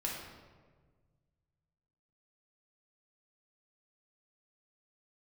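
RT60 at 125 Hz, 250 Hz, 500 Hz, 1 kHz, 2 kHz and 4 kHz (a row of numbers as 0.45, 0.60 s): 2.6, 1.9, 1.7, 1.3, 1.1, 0.90 s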